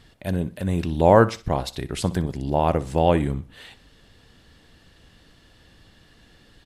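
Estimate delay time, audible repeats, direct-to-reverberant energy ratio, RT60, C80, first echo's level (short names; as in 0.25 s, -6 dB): 62 ms, 2, none, none, none, -17.5 dB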